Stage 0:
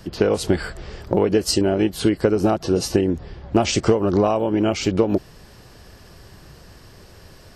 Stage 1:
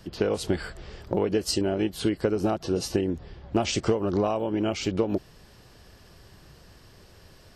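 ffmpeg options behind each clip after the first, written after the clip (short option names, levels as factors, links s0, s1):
-af "equalizer=f=3300:t=o:w=0.77:g=2.5,volume=0.447"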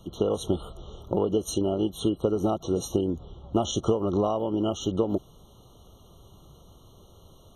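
-af "afftfilt=real='re*eq(mod(floor(b*sr/1024/1400),2),0)':imag='im*eq(mod(floor(b*sr/1024/1400),2),0)':win_size=1024:overlap=0.75"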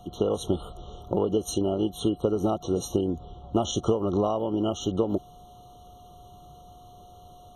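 -af "aeval=exprs='val(0)+0.00355*sin(2*PI*720*n/s)':c=same"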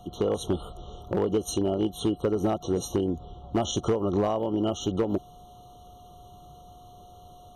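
-af "asoftclip=type=hard:threshold=0.126"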